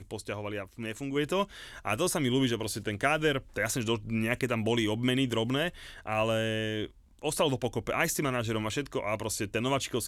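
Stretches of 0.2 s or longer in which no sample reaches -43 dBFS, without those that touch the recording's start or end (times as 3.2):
6.87–7.22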